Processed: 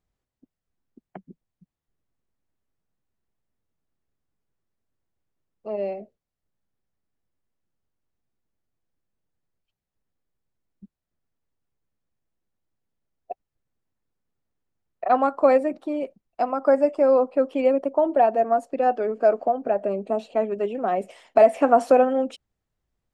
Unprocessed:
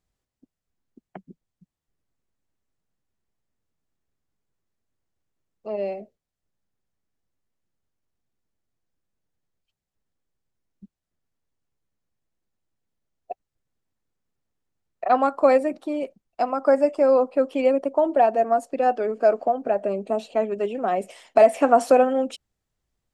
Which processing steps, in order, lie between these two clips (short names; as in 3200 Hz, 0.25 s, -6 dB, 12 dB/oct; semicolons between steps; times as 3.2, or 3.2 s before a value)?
high shelf 3600 Hz -8.5 dB